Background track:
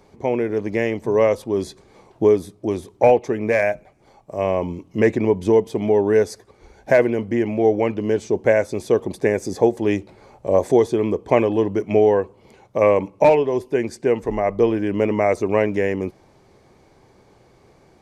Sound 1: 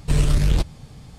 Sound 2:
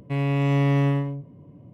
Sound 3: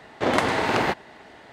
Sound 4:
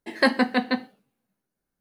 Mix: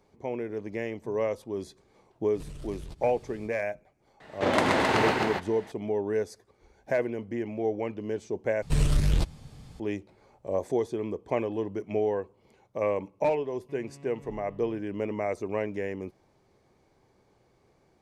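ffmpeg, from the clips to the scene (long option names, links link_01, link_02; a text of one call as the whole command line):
ffmpeg -i bed.wav -i cue0.wav -i cue1.wav -i cue2.wav -filter_complex "[1:a]asplit=2[link_01][link_02];[0:a]volume=-12dB[link_03];[link_01]acompressor=threshold=-32dB:ratio=6:attack=3.2:release=140:knee=1:detection=peak[link_04];[3:a]aecho=1:1:125.4|265.3:0.631|0.631[link_05];[2:a]acompressor=threshold=-30dB:ratio=6:attack=3.2:release=140:knee=1:detection=peak[link_06];[link_03]asplit=2[link_07][link_08];[link_07]atrim=end=8.624[link_09];[link_02]atrim=end=1.18,asetpts=PTS-STARTPTS,volume=-5.5dB[link_10];[link_08]atrim=start=9.796[link_11];[link_04]atrim=end=1.18,asetpts=PTS-STARTPTS,volume=-7.5dB,afade=type=in:duration=0.05,afade=type=out:start_time=1.13:duration=0.05,adelay=2320[link_12];[link_05]atrim=end=1.52,asetpts=PTS-STARTPTS,volume=-4dB,afade=type=in:duration=0.004:curve=hsin,afade=type=out:start_time=1.516:duration=0.004:curve=hsin,adelay=4200[link_13];[link_06]atrim=end=1.73,asetpts=PTS-STARTPTS,volume=-17.5dB,afade=type=in:duration=0.004:curve=hsin,afade=type=out:start_time=1.726:duration=0.004:curve=hsin,adelay=13590[link_14];[link_09][link_10]acrossfade=duration=0.004:curve1=hsin:curve2=hsin[link_15];[link_15][link_11]acrossfade=duration=0.004:curve1=hsin:curve2=hsin[link_16];[link_16][link_12][link_13][link_14]amix=inputs=4:normalize=0" out.wav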